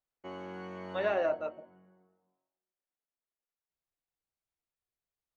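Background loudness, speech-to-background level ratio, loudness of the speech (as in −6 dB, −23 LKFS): −45.0 LKFS, 12.0 dB, −33.0 LKFS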